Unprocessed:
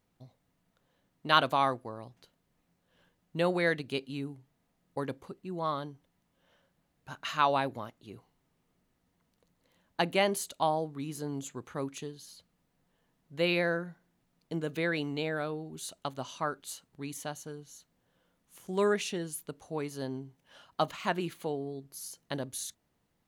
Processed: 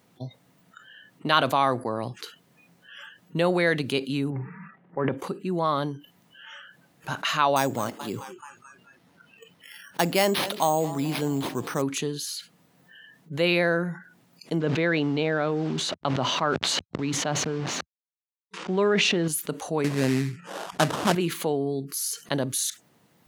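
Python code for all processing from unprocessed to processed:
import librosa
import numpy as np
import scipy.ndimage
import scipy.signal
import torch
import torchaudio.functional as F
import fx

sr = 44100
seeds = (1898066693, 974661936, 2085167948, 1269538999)

y = fx.chain(x, sr, fx.lowpass(hz=2200.0, slope=24),
    fx.comb(ms=5.2, depth=0.36),
    fx.transient(attack_db=-6, sustain_db=12), at=(4.3, 5.12))
y = fx.chain(y, sr, fx.resample_bad(factor=6, down='none', up='hold'),
    fx.echo_warbled(ms=216, feedback_pct=54, rate_hz=2.8, cents=138, wet_db=-23.0), at=(7.56, 11.82))
y = fx.chain(y, sr, fx.delta_hold(step_db=-49.5),
    fx.air_absorb(metres=160.0),
    fx.sustainer(db_per_s=22.0), at=(14.6, 19.28))
y = fx.chain(y, sr, fx.low_shelf(hz=490.0, db=9.5),
    fx.sample_hold(seeds[0], rate_hz=2200.0, jitter_pct=20),
    fx.lowpass(hz=11000.0, slope=12), at=(19.84, 21.15))
y = scipy.signal.sosfilt(scipy.signal.butter(4, 110.0, 'highpass', fs=sr, output='sos'), y)
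y = fx.noise_reduce_blind(y, sr, reduce_db=27)
y = fx.env_flatten(y, sr, amount_pct=50)
y = F.gain(torch.from_numpy(y), 2.0).numpy()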